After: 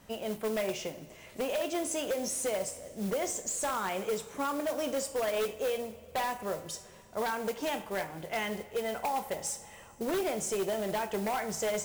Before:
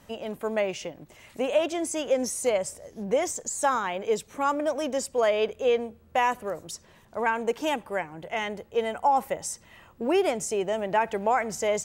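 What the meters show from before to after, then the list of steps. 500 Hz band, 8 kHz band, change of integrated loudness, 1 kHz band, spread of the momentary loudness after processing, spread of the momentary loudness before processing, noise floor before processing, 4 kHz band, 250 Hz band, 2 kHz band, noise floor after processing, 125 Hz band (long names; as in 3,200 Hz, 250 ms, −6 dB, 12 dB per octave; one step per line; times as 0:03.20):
−6.5 dB, −2.0 dB, −6.0 dB, −8.0 dB, 6 LU, 11 LU, −56 dBFS, −3.0 dB, −4.5 dB, −6.0 dB, −53 dBFS, −1.0 dB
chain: downward compressor 6 to 1, threshold −25 dBFS, peak gain reduction 7.5 dB
coupled-rooms reverb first 0.46 s, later 3.2 s, from −18 dB, DRR 7 dB
noise that follows the level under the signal 16 dB
wave folding −22.5 dBFS
level −2.5 dB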